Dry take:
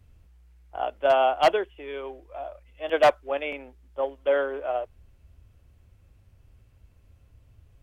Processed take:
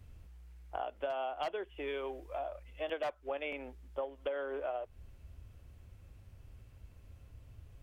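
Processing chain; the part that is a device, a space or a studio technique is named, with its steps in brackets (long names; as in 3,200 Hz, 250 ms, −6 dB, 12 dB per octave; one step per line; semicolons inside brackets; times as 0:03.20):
0:01.87–0:02.39: high-shelf EQ 4,600 Hz +5.5 dB
serial compression, leveller first (downward compressor 2.5 to 1, threshold −25 dBFS, peak gain reduction 7.5 dB; downward compressor 5 to 1, threshold −37 dBFS, peak gain reduction 14 dB)
level +1.5 dB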